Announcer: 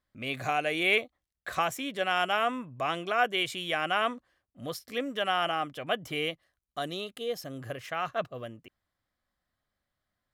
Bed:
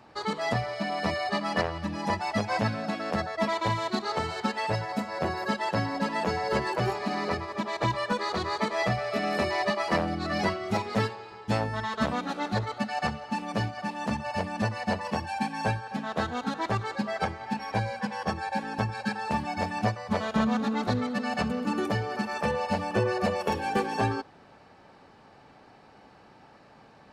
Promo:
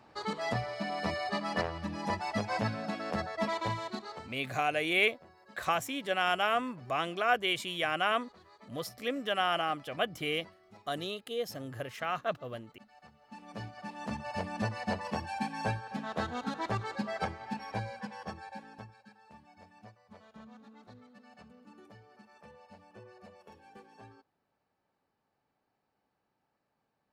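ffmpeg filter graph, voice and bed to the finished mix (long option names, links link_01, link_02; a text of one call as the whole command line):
ffmpeg -i stem1.wav -i stem2.wav -filter_complex "[0:a]adelay=4100,volume=-1.5dB[link_01];[1:a]volume=18.5dB,afade=type=out:start_time=3.56:duration=0.82:silence=0.0668344,afade=type=in:start_time=13.13:duration=1.37:silence=0.0668344,afade=type=out:start_time=17.22:duration=1.81:silence=0.0794328[link_02];[link_01][link_02]amix=inputs=2:normalize=0" out.wav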